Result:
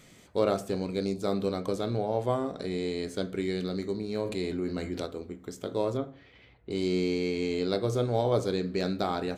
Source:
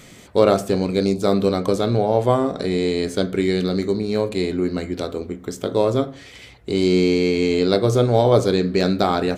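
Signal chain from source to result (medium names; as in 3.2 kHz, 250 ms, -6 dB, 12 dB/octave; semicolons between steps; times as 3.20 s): 5.97–6.71 s: distance through air 310 m; feedback comb 160 Hz, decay 0.4 s, harmonics all, mix 40%; 4.25–5.06 s: level flattener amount 50%; trim -7 dB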